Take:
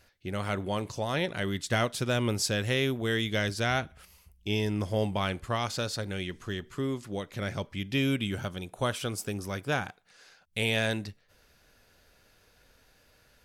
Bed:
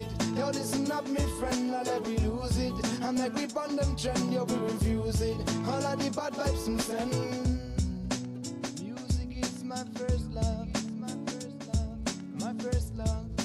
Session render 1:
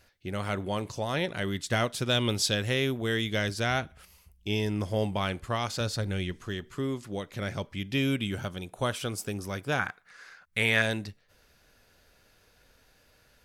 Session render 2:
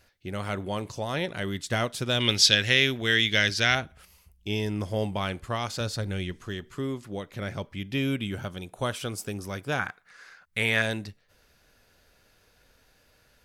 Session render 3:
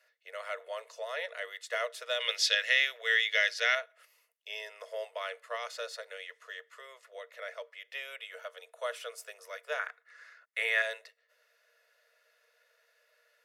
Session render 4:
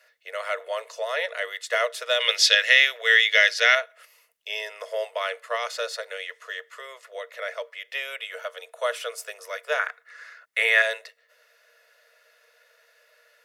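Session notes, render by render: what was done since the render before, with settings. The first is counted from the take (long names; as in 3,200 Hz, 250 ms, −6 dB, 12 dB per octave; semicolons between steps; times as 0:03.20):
0:02.09–0:02.55: parametric band 3,500 Hz +10.5 dB 0.57 octaves; 0:05.80–0:06.33: low-shelf EQ 140 Hz +9.5 dB; 0:09.79–0:10.82: flat-topped bell 1,500 Hz +9.5 dB 1.3 octaves
0:02.20–0:03.75: flat-topped bell 3,100 Hz +10 dB 2.3 octaves; 0:06.92–0:08.49: parametric band 6,700 Hz −3.5 dB 1.8 octaves
Chebyshev high-pass with heavy ripple 450 Hz, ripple 9 dB; notch comb filter 790 Hz
level +9.5 dB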